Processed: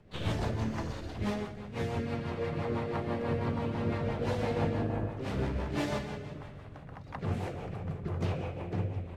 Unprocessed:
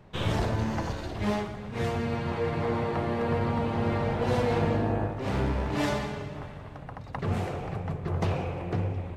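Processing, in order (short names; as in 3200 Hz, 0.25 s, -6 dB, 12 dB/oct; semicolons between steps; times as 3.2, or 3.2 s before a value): harmoniser +3 st -10 dB; de-hum 61.29 Hz, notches 33; rotary speaker horn 6 Hz; gain -3 dB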